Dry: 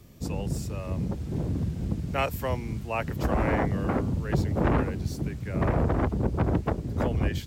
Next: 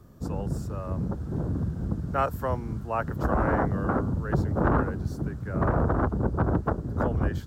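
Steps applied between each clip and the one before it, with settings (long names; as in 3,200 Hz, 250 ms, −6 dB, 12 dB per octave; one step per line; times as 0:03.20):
high shelf with overshoot 1,800 Hz −7.5 dB, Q 3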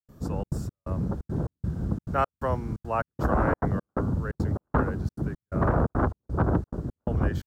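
gate pattern ".xxxx.xx." 174 BPM −60 dB
level +1 dB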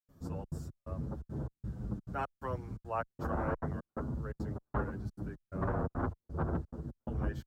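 barber-pole flanger 8.3 ms −0.34 Hz
level −7 dB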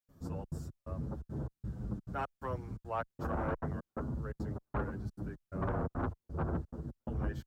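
soft clipping −24 dBFS, distortion −22 dB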